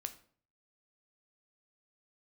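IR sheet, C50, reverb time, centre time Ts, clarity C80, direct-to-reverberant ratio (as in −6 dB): 14.0 dB, 0.50 s, 6 ms, 18.0 dB, 8.5 dB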